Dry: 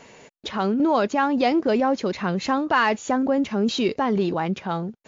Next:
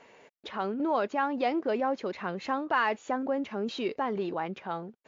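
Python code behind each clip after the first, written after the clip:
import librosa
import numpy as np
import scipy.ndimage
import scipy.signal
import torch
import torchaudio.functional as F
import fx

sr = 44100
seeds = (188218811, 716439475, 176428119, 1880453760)

y = fx.bass_treble(x, sr, bass_db=-10, treble_db=-11)
y = y * 10.0 ** (-6.5 / 20.0)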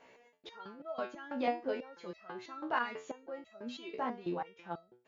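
y = fx.resonator_held(x, sr, hz=6.1, low_hz=63.0, high_hz=650.0)
y = y * 10.0 ** (3.0 / 20.0)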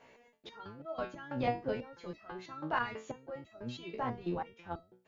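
y = fx.octave_divider(x, sr, octaves=1, level_db=-2.0)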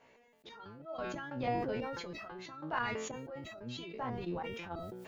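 y = fx.sustainer(x, sr, db_per_s=28.0)
y = y * 10.0 ** (-3.5 / 20.0)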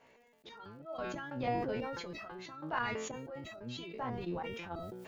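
y = fx.dmg_crackle(x, sr, seeds[0], per_s=44.0, level_db=-60.0)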